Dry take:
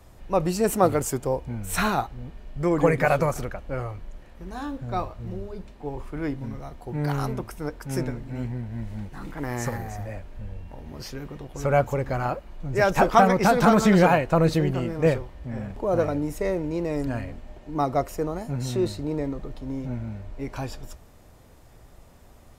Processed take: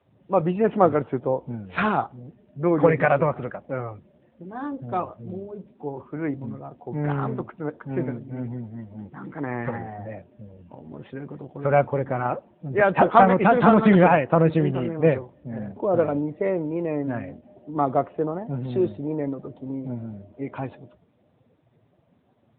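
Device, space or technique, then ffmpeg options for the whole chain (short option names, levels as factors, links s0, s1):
mobile call with aggressive noise cancelling: -af "highpass=130,afftdn=nr=14:nf=-45,volume=1.33" -ar 8000 -c:a libopencore_amrnb -b:a 10200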